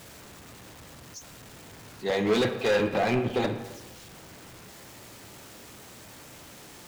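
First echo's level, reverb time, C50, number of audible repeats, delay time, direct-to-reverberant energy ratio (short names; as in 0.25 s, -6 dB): none, 1.1 s, 9.0 dB, none, none, 6.0 dB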